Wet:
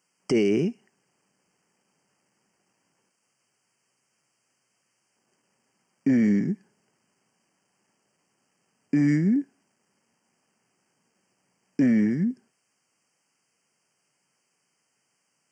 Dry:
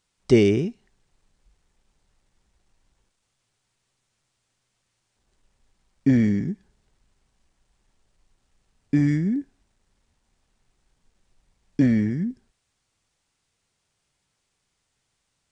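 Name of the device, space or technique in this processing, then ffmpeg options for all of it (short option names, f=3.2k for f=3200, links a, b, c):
PA system with an anti-feedback notch: -af "highpass=f=160:w=0.5412,highpass=f=160:w=1.3066,asuperstop=centerf=3800:order=20:qfactor=2.8,alimiter=limit=-16.5dB:level=0:latency=1,volume=2.5dB"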